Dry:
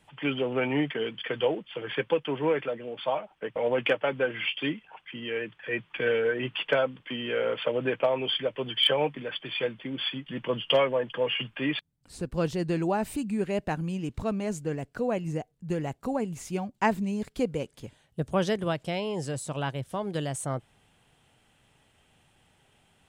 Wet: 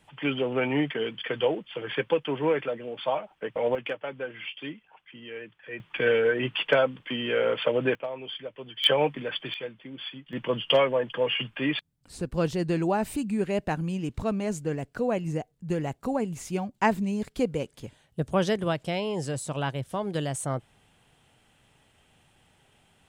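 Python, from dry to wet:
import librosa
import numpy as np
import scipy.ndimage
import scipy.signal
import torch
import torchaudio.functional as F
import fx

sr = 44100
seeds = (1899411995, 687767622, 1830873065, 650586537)

y = fx.gain(x, sr, db=fx.steps((0.0, 1.0), (3.75, -7.5), (5.8, 3.0), (7.95, -9.0), (8.84, 2.5), (9.54, -7.0), (10.33, 1.5)))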